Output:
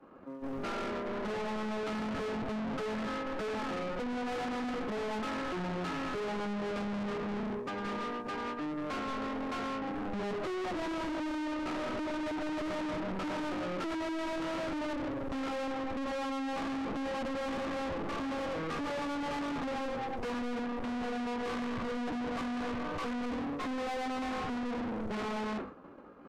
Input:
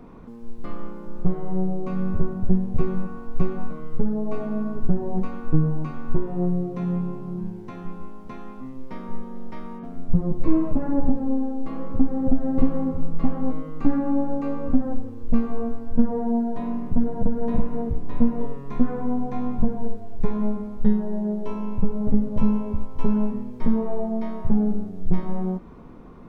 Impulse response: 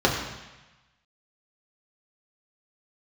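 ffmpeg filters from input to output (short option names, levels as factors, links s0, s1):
-filter_complex "[0:a]agate=range=0.0224:threshold=0.0355:ratio=3:detection=peak,acrossover=split=200|900[s0][s1][s2];[s0]alimiter=limit=0.133:level=0:latency=1:release=52[s3];[s3][s1][s2]amix=inputs=3:normalize=0,asetrate=50951,aresample=44100,atempo=0.865537,asplit=2[s4][s5];[s5]highpass=f=720:p=1,volume=70.8,asoftclip=type=tanh:threshold=0.335[s6];[s4][s6]amix=inputs=2:normalize=0,lowpass=f=1400:p=1,volume=0.501,asoftclip=type=tanh:threshold=0.0531,volume=0.355"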